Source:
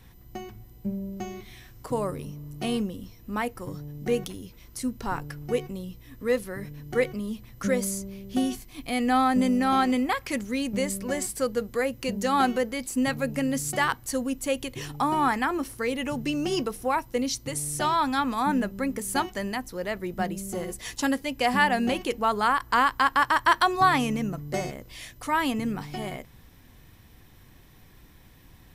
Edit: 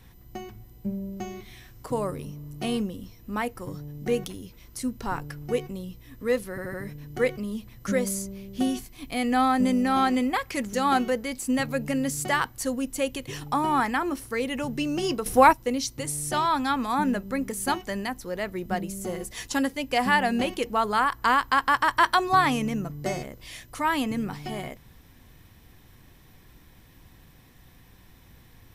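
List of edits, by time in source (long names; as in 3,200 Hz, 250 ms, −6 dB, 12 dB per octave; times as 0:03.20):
0:06.50: stutter 0.08 s, 4 plays
0:10.49–0:12.21: remove
0:16.74–0:17.01: clip gain +10 dB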